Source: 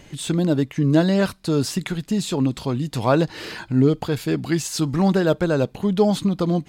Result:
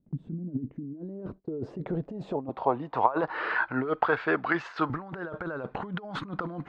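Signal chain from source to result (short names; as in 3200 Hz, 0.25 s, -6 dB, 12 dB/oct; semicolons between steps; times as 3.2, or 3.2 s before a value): 2.49–4.9 three-band isolator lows -13 dB, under 410 Hz, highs -21 dB, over 5400 Hz; negative-ratio compressor -25 dBFS, ratio -0.5; low-pass sweep 210 Hz -> 1400 Hz, 0.37–3.55; gate -37 dBFS, range -23 dB; low shelf 320 Hz -12 dB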